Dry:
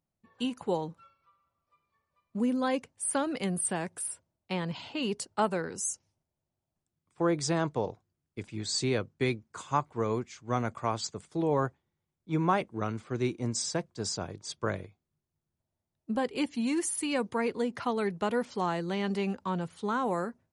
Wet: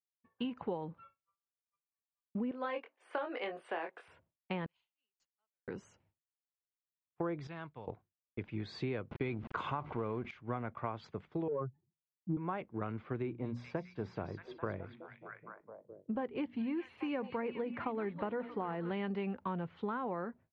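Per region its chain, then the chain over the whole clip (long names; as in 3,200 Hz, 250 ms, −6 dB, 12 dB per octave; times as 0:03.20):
0:02.51–0:04.08: high-pass filter 390 Hz 24 dB per octave + double-tracking delay 24 ms −5 dB
0:04.66–0:05.68: resonant band-pass 6,600 Hz, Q 16 + log-companded quantiser 8 bits
0:07.47–0:07.88: guitar amp tone stack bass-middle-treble 5-5-5 + notch filter 1,900 Hz, Q 16
0:09.11–0:10.31: mu-law and A-law mismatch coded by A + notch filter 1,800 Hz, Q 11 + envelope flattener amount 70%
0:11.48–0:12.37: expanding power law on the bin magnitudes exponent 3.1 + high-pass filter 120 Hz 24 dB per octave + transient designer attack +10 dB, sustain +5 dB
0:13.22–0:18.91: high-shelf EQ 2,700 Hz −10 dB + mains-hum notches 60/120/180/240 Hz + echo through a band-pass that steps 209 ms, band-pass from 4,800 Hz, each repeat −0.7 octaves, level −3 dB
whole clip: downward expander −52 dBFS; low-pass filter 2,800 Hz 24 dB per octave; downward compressor 6 to 1, threshold −34 dBFS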